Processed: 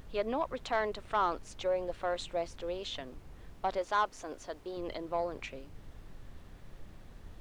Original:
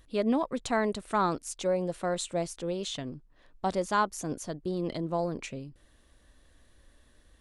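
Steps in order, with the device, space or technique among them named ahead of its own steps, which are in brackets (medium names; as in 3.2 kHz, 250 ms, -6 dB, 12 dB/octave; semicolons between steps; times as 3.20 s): aircraft cabin announcement (band-pass 490–3600 Hz; saturation -20 dBFS, distortion -17 dB; brown noise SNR 11 dB); 3.78–4.77 s: tone controls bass -8 dB, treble +1 dB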